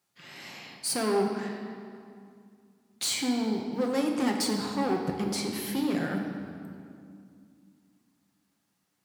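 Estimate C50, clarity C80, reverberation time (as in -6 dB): 4.0 dB, 5.5 dB, 2.3 s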